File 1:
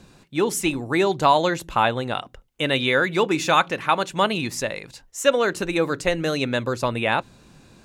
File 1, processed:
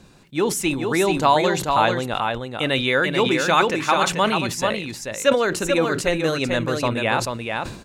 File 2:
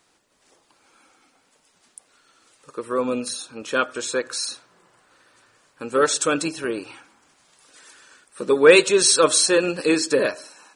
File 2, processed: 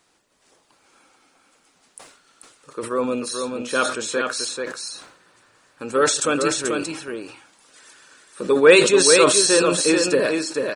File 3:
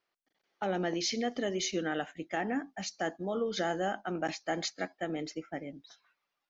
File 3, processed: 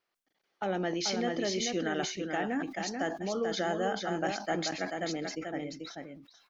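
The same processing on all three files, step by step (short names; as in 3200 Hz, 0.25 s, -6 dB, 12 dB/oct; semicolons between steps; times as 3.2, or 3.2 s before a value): on a send: echo 0.437 s -5 dB; on the sum: sustainer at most 85 dB/s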